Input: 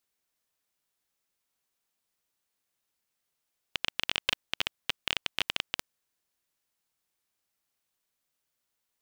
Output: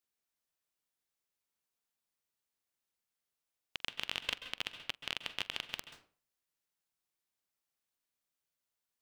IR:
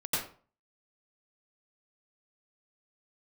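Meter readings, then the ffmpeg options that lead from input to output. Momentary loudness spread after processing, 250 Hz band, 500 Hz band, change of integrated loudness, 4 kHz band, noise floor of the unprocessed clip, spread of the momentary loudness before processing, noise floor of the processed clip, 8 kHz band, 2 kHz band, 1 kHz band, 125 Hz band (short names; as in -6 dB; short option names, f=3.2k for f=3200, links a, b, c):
7 LU, -7.0 dB, -7.0 dB, -7.0 dB, -7.0 dB, -83 dBFS, 5 LU, under -85 dBFS, -7.0 dB, -7.0 dB, -7.0 dB, -7.0 dB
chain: -filter_complex "[0:a]asplit=2[a][b];[1:a]atrim=start_sample=2205,adelay=45[c];[b][c]afir=irnorm=-1:irlink=0,volume=-17dB[d];[a][d]amix=inputs=2:normalize=0,volume=-7.5dB"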